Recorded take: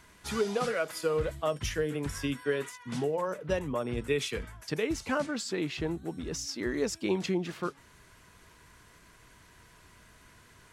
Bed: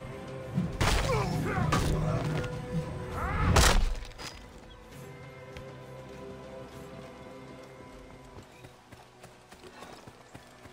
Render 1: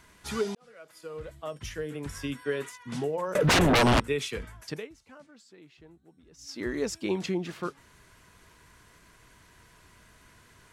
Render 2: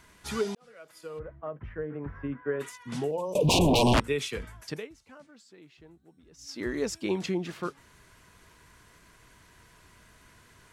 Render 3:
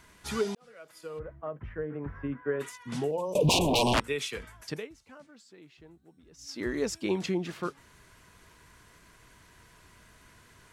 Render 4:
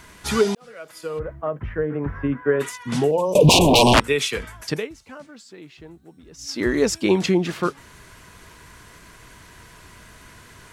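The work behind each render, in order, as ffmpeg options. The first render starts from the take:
-filter_complex "[0:a]asettb=1/sr,asplit=3[a][b][c];[a]atrim=end=3.354[d];[b]atrim=start=3.35:end=4,asetpts=PTS-STARTPTS,afade=t=in:d=0.004:c=qsin,afade=t=out:st=0.646:d=0.004:c=qsin,aeval=exprs='0.133*sin(PI/2*7.08*val(0)/0.133)':c=same[e];[c]atrim=start=3.996[f];[d][e]acrossfade=d=0.004:c1=hsin:c2=qsin[g];[g][f]acrossfade=d=0.004:c1=qsin:c2=hsin,asplit=4[h][i][j][k];[h]atrim=end=0.55,asetpts=PTS-STARTPTS,afade=t=out:st=0.546:d=0.004:c=hsin[l];[i]atrim=start=0.55:end=4.9,asetpts=PTS-STARTPTS,afade=t=in:d=2.09,afade=t=out:st=4.11:d=0.24:silence=0.0891251[m];[j]atrim=start=4.9:end=6.37,asetpts=PTS-STARTPTS,volume=-21dB[n];[k]atrim=start=6.37,asetpts=PTS-STARTPTS,afade=t=in:d=0.24:silence=0.0891251[o];[l][m][n][o]concat=n=4:v=0:a=1"
-filter_complex "[0:a]asplit=3[a][b][c];[a]afade=t=out:st=1.18:d=0.02[d];[b]lowpass=f=1.7k:w=0.5412,lowpass=f=1.7k:w=1.3066,afade=t=in:st=1.18:d=0.02,afade=t=out:st=2.59:d=0.02[e];[c]afade=t=in:st=2.59:d=0.02[f];[d][e][f]amix=inputs=3:normalize=0,asettb=1/sr,asplit=3[g][h][i];[g]atrim=end=3.114[j];[h]atrim=start=3.11:end=3.94,asetpts=PTS-STARTPTS,afade=t=in:d=0.004:c=qsin,afade=t=out:st=0.826:d=0.004:c=qsin,asuperstop=centerf=1600:order=12:qfactor=1.1[k];[i]atrim=start=3.936[l];[j][k]acrossfade=d=0.004:c1=hsin:c2=qsin[m];[m][l]acrossfade=d=0.004:c1=qsin:c2=hsin"
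-filter_complex "[0:a]asettb=1/sr,asplit=3[a][b][c];[a]atrim=end=3.504[d];[b]atrim=start=3.5:end=4.6,asetpts=PTS-STARTPTS,afade=t=in:d=0.004:c=qsin,afade=t=out:st=1.096:d=0.004:c=qsin,lowshelf=f=420:g=-7[e];[c]atrim=start=4.596[f];[d][e]acrossfade=d=0.004:c1=hsin:c2=qsin[g];[g][f]acrossfade=d=0.004:c1=qsin:c2=hsin"
-af "volume=11dB,alimiter=limit=-3dB:level=0:latency=1"

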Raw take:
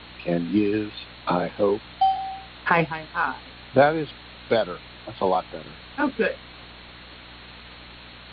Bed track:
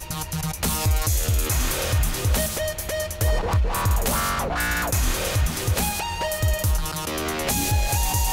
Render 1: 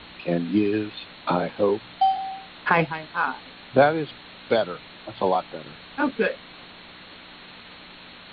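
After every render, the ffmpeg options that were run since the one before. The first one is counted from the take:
-af "bandreject=f=60:t=h:w=4,bandreject=f=120:t=h:w=4"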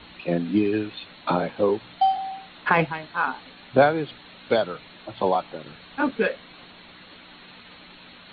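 -af "afftdn=nr=6:nf=-45"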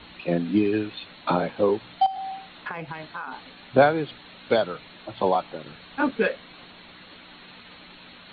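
-filter_complex "[0:a]asettb=1/sr,asplit=3[a][b][c];[a]atrim=end=2.064[d];[b]atrim=start=2.06:end=3.32,asetpts=PTS-STARTPTS,afade=t=in:d=0.004:c=qsin,afade=t=out:st=1.256:d=0.004:c=qsin,acompressor=threshold=-29dB:ratio=10:attack=3.2:release=140:knee=1:detection=peak[e];[c]atrim=start=3.316[f];[d][e]acrossfade=d=0.004:c1=hsin:c2=qsin[g];[g][f]acrossfade=d=0.004:c1=qsin:c2=hsin"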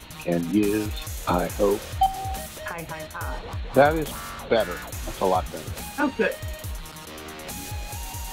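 -filter_complex "[1:a]volume=-12dB[a];[0:a][a]amix=inputs=2:normalize=0"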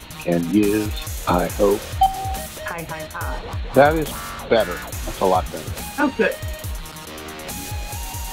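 -af "volume=4.5dB,alimiter=limit=-2dB:level=0:latency=1"

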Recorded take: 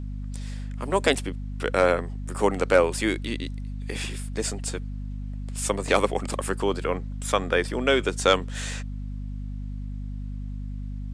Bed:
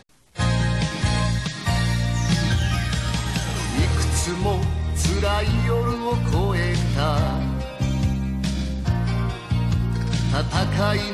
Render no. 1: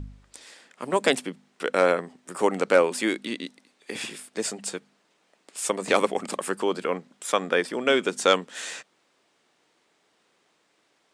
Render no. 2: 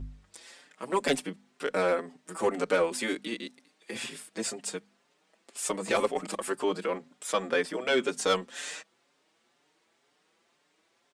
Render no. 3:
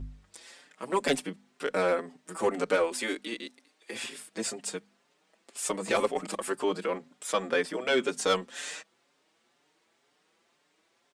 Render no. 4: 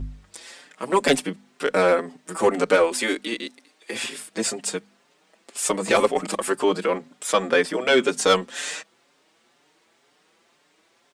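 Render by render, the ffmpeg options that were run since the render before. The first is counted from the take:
-af "bandreject=f=50:t=h:w=4,bandreject=f=100:t=h:w=4,bandreject=f=150:t=h:w=4,bandreject=f=200:t=h:w=4,bandreject=f=250:t=h:w=4"
-filter_complex "[0:a]asoftclip=type=tanh:threshold=-12dB,asplit=2[a][b];[b]adelay=5.4,afreqshift=2[c];[a][c]amix=inputs=2:normalize=1"
-filter_complex "[0:a]asettb=1/sr,asplit=3[a][b][c];[a]atrim=end=2.764[d];[b]atrim=start=2.76:end=4.18,asetpts=PTS-STARTPTS,afade=t=in:d=0.004:c=qsin,afade=t=out:st=1.416:d=0.004:c=qsin,equalizer=f=160:t=o:w=0.78:g=-12[e];[c]atrim=start=4.176[f];[d][e]acrossfade=d=0.004:c1=hsin:c2=qsin[g];[g][f]acrossfade=d=0.004:c1=qsin:c2=hsin"
-af "volume=8dB"

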